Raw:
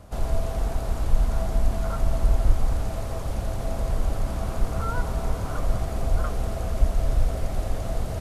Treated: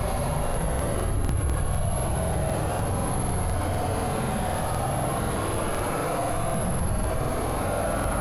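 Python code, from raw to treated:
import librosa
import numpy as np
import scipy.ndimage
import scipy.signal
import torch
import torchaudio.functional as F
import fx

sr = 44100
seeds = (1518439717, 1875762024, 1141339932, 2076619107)

y = fx.low_shelf(x, sr, hz=210.0, db=-6.5)
y = (np.kron(scipy.signal.resample_poly(y, 1, 4), np.eye(4)[0]) * 4)[:len(y)]
y = scipy.signal.sosfilt(scipy.signal.butter(2, 3900.0, 'lowpass', fs=sr, output='sos'), y)
y = fx.peak_eq(y, sr, hz=94.0, db=-4.5, octaves=2.0)
y = fx.whisperise(y, sr, seeds[0])
y = fx.paulstretch(y, sr, seeds[1], factor=8.8, window_s=0.1, from_s=3.86)
y = fx.buffer_crackle(y, sr, first_s=0.45, period_s=0.25, block=2048, kind='repeat')
y = fx.env_flatten(y, sr, amount_pct=70)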